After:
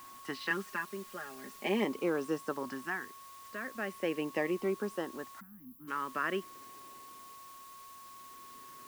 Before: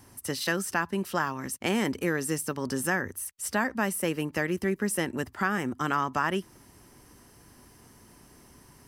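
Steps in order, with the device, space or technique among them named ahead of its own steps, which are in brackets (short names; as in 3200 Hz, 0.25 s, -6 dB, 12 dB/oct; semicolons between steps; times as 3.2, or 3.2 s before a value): shortwave radio (BPF 320–2600 Hz; tremolo 0.45 Hz, depth 78%; LFO notch saw up 0.38 Hz 440–2600 Hz; whine 1100 Hz -50 dBFS; white noise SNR 18 dB); 0.5–1.85 comb 4.9 ms, depth 85%; 5.4–5.88 spectral gain 320–11000 Hz -28 dB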